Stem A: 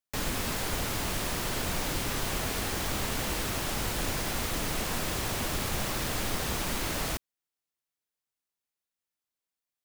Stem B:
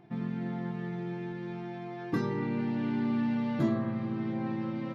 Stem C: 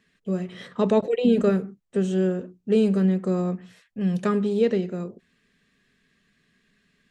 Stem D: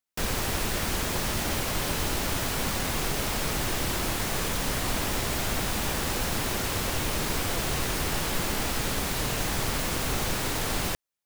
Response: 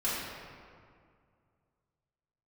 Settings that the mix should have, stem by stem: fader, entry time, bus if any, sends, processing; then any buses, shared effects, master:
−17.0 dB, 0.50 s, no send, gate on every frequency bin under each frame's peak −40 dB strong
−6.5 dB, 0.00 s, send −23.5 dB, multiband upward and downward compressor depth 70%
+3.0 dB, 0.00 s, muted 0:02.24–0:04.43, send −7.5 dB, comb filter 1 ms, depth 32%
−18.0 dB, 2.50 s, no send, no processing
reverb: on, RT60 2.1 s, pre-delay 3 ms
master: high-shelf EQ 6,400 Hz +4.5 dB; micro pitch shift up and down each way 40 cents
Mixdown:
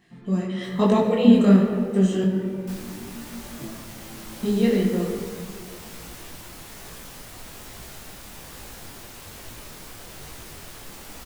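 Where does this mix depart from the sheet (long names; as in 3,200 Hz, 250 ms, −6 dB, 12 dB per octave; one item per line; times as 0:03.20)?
stem A −17.0 dB → −23.5 dB
stem B: missing multiband upward and downward compressor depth 70%
stem D −18.0 dB → −10.0 dB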